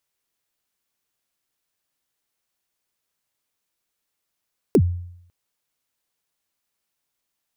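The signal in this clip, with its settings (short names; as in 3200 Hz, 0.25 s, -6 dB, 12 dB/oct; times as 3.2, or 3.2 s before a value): kick drum length 0.55 s, from 480 Hz, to 88 Hz, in 62 ms, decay 0.72 s, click on, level -9 dB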